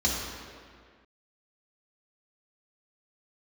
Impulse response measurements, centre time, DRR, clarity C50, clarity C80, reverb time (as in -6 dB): 98 ms, -5.5 dB, 0.5 dB, 2.0 dB, 1.9 s